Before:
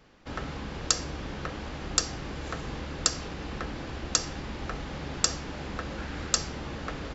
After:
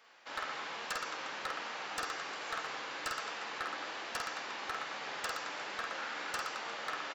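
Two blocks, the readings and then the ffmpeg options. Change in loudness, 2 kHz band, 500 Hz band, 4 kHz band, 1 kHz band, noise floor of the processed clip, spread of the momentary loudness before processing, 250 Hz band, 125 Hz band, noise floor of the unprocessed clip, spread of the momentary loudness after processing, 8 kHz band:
-7.0 dB, +1.5 dB, -6.5 dB, -8.0 dB, +0.5 dB, -44 dBFS, 9 LU, -16.5 dB, -27.0 dB, -39 dBFS, 2 LU, no reading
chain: -filter_complex "[0:a]acrossover=split=2800[s0][s1];[s1]acompressor=threshold=0.00447:ratio=4:attack=1:release=60[s2];[s0][s2]amix=inputs=2:normalize=0,highpass=870,highshelf=f=4100:g=-3,acontrast=36,flanger=delay=4.2:depth=7.1:regen=70:speed=1.2:shape=sinusoidal,asplit=2[s3][s4];[s4]adelay=13,volume=0.2[s5];[s3][s5]amix=inputs=2:normalize=0,aecho=1:1:50|120|218|355.2|547.3:0.631|0.398|0.251|0.158|0.1,aeval=exprs='0.0376*(abs(mod(val(0)/0.0376+3,4)-2)-1)':c=same"

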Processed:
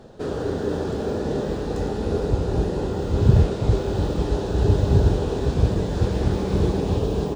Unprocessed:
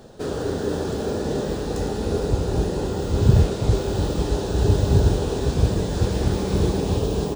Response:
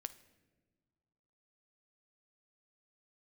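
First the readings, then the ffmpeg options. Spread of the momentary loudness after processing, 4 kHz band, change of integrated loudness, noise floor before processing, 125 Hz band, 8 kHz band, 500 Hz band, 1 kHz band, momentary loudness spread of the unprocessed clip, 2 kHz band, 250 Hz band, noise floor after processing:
8 LU, -4.0 dB, 0.0 dB, -28 dBFS, 0.0 dB, -7.5 dB, 0.0 dB, -0.5 dB, 8 LU, -1.0 dB, 0.0 dB, -28 dBFS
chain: -af "lowpass=f=3100:p=1"

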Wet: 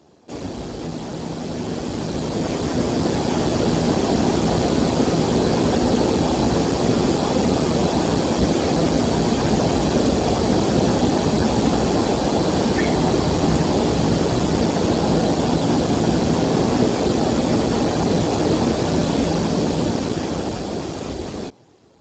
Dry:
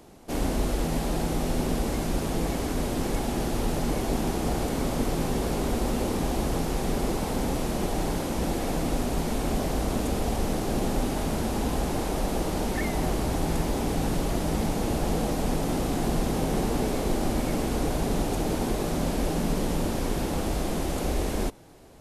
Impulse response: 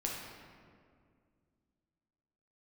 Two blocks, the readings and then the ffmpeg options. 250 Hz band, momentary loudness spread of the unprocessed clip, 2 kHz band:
+9.5 dB, 1 LU, +7.0 dB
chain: -af "dynaudnorm=f=540:g=9:m=5.01" -ar 16000 -c:a libspeex -b:a 8k

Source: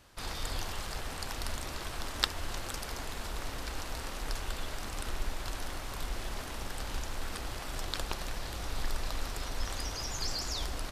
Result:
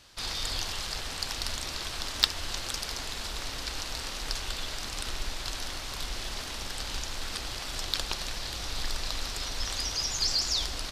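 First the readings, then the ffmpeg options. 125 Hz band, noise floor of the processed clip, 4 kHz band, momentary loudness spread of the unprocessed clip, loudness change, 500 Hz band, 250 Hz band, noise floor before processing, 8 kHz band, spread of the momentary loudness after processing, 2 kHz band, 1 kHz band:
-1.0 dB, -38 dBFS, +9.0 dB, 5 LU, +6.0 dB, -0.5 dB, -0.5 dB, -41 dBFS, +6.5 dB, 8 LU, +3.5 dB, +0.5 dB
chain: -filter_complex "[0:a]equalizer=f=4500:t=o:w=1.9:g=11,asplit=2[s0][s1];[s1]aeval=exprs='0.211*(abs(mod(val(0)/0.211+3,4)-2)-1)':c=same,volume=0.447[s2];[s0][s2]amix=inputs=2:normalize=0,volume=0.631"

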